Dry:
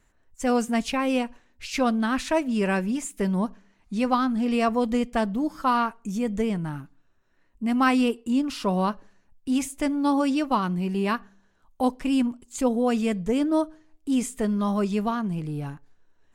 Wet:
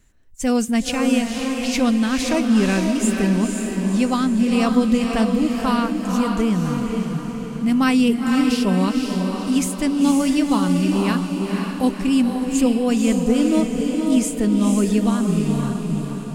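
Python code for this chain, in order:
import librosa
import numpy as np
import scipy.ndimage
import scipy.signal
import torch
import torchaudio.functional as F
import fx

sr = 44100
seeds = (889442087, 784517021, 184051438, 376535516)

y = fx.peak_eq(x, sr, hz=930.0, db=-10.5, octaves=2.3)
y = fx.echo_diffused(y, sr, ms=510, feedback_pct=53, wet_db=-3.5)
y = y * 10.0 ** (8.0 / 20.0)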